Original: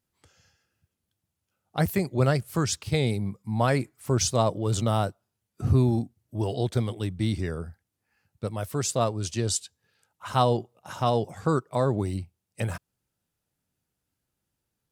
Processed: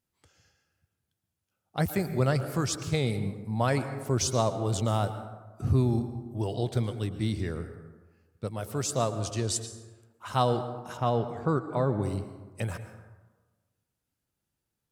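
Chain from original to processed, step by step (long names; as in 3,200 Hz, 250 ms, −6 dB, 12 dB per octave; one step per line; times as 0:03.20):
0:10.97–0:12.03: bass and treble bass +1 dB, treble −13 dB
dense smooth reverb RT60 1.3 s, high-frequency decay 0.45×, pre-delay 100 ms, DRR 10 dB
level −3 dB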